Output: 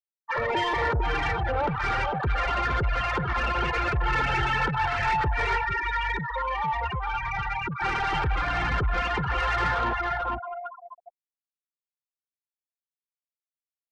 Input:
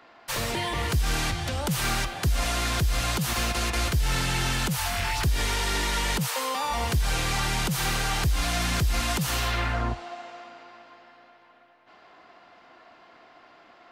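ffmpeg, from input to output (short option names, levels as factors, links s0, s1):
-filter_complex "[0:a]aecho=1:1:452|904|1356:0.501|0.0902|0.0162,asettb=1/sr,asplit=3[s0][s1][s2];[s0]atrim=end=5.574[s3];[s1]atrim=start=5.57:end=7.82,asetpts=PTS-STARTPTS,afade=t=in:d=0.004:c=qsin,afade=t=out:st=2.246:d=0.004:c=qsin,acrossover=split=220|1400[s4][s5][s6];[s4]acompressor=threshold=0.0282:ratio=4[s7];[s5]acompressor=threshold=0.01:ratio=4[s8];[s6]acompressor=threshold=0.0251:ratio=4[s9];[s7][s8][s9]amix=inputs=3:normalize=0[s10];[s2]atrim=start=7.816[s11];[s3][s10]acrossfade=d=0.004:c1=hsin:c2=qsin[s12];[s12][s11]acrossfade=d=0.004:c1=qsin:c2=hsin,asplit=2[s13][s14];[s14]highpass=f=720:p=1,volume=7.94,asoftclip=type=tanh:threshold=0.211[s15];[s13][s15]amix=inputs=2:normalize=0,lowpass=f=2500:p=1,volume=0.501,aemphasis=mode=reproduction:type=cd,afftfilt=real='re*gte(hypot(re,im),0.112)':imag='im*gte(hypot(re,im),0.112)':win_size=1024:overlap=0.75,asoftclip=type=tanh:threshold=0.0631,aecho=1:1:2.2:0.43,volume=1.33" -ar 48000 -c:a libopus -b:a 48k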